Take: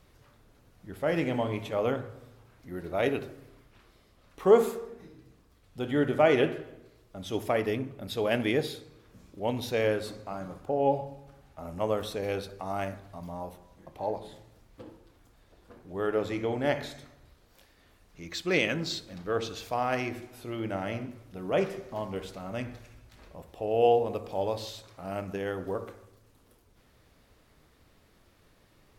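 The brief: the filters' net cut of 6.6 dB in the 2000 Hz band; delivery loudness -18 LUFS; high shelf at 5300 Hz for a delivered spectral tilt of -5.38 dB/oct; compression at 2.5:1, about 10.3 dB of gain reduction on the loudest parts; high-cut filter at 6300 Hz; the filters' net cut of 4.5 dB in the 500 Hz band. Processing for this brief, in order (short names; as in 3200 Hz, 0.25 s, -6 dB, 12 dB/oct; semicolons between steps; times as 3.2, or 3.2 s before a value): LPF 6300 Hz; bell 500 Hz -5 dB; bell 2000 Hz -7 dB; high shelf 5300 Hz -6.5 dB; compressor 2.5:1, threshold -34 dBFS; gain +21 dB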